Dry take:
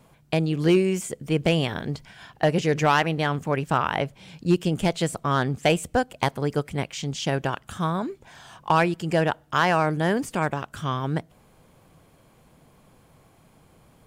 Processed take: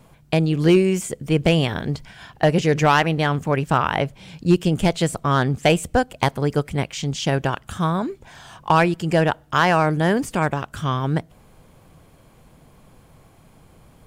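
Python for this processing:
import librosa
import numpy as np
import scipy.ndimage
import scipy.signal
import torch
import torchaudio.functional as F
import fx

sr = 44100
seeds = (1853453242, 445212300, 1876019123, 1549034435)

y = fx.low_shelf(x, sr, hz=77.0, db=8.0)
y = F.gain(torch.from_numpy(y), 3.5).numpy()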